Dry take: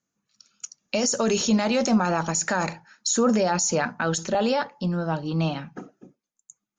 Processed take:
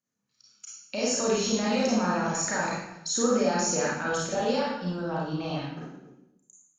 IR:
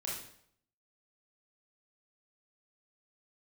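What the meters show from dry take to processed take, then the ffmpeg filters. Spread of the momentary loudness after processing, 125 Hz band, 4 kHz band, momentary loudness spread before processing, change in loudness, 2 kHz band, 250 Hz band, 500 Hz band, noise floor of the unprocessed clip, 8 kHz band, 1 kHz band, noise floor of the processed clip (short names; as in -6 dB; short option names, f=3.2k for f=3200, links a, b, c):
13 LU, -6.0 dB, -2.5 dB, 13 LU, -3.5 dB, -2.5 dB, -4.5 dB, -2.5 dB, under -85 dBFS, -3.5 dB, -3.0 dB, -77 dBFS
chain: -filter_complex "[1:a]atrim=start_sample=2205,asetrate=33957,aresample=44100[a];[0:a][a]afir=irnorm=-1:irlink=0,volume=-6dB"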